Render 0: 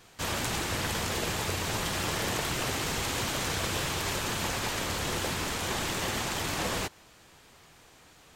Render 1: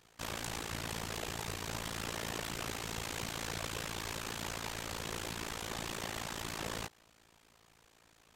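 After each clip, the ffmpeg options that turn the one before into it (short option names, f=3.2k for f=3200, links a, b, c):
-af "tremolo=f=56:d=0.947,volume=-5dB"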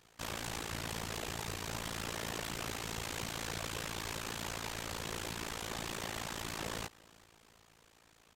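-af "asoftclip=type=hard:threshold=-31dB,aecho=1:1:375|750|1125|1500:0.0631|0.036|0.0205|0.0117"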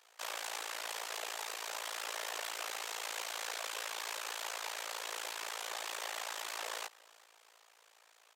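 -af "highpass=f=530:w=0.5412,highpass=f=530:w=1.3066,volume=1dB"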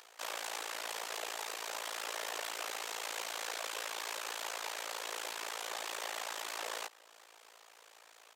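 -af "lowshelf=f=260:g=11.5,acompressor=mode=upward:threshold=-51dB:ratio=2.5"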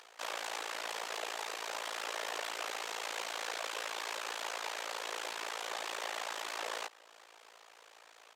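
-af "highshelf=f=8.7k:g=-11,volume=2dB"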